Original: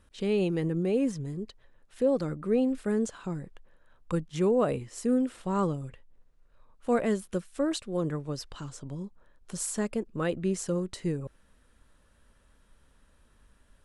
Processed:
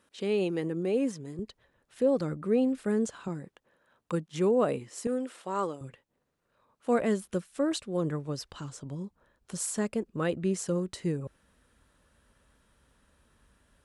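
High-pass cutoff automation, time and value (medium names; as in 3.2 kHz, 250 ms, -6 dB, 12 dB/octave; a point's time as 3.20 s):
230 Hz
from 1.39 s 64 Hz
from 3.28 s 160 Hz
from 5.07 s 390 Hz
from 5.81 s 140 Hz
from 7.01 s 54 Hz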